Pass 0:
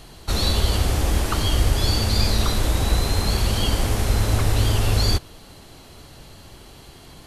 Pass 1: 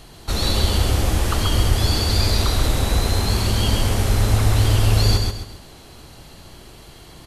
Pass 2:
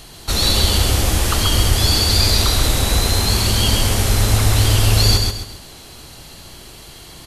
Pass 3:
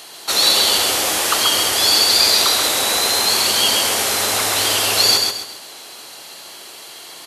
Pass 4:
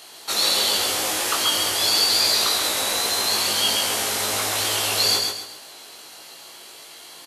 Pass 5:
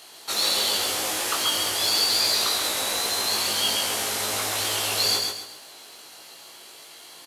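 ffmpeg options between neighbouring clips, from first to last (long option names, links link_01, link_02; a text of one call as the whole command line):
ffmpeg -i in.wav -af "aecho=1:1:133|266|399|532:0.631|0.221|0.0773|0.0271" out.wav
ffmpeg -i in.wav -af "highshelf=frequency=2300:gain=7.5,volume=1.5dB" out.wav
ffmpeg -i in.wav -af "highpass=490,volume=4dB" out.wav
ffmpeg -i in.wav -filter_complex "[0:a]asplit=2[link_01][link_02];[link_02]adelay=19,volume=-3.5dB[link_03];[link_01][link_03]amix=inputs=2:normalize=0,volume=-7dB" out.wav
ffmpeg -i in.wav -af "acrusher=bits=6:mode=log:mix=0:aa=0.000001,volume=-3dB" out.wav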